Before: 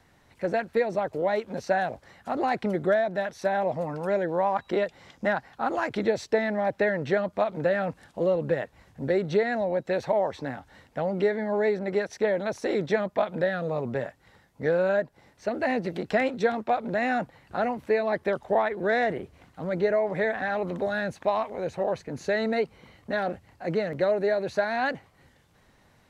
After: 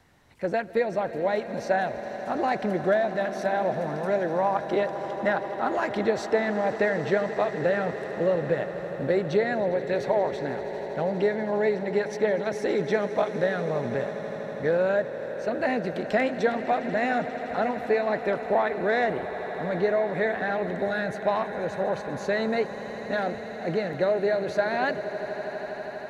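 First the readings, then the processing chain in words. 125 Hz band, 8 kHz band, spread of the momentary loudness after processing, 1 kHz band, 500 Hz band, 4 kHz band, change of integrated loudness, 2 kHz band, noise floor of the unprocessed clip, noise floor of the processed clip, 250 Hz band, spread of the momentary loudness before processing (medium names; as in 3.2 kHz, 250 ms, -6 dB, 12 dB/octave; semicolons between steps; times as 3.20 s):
+0.5 dB, no reading, 7 LU, +1.0 dB, +1.0 dB, +1.0 dB, +0.5 dB, +1.0 dB, -62 dBFS, -36 dBFS, +0.5 dB, 8 LU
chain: echo with a slow build-up 81 ms, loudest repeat 8, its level -18 dB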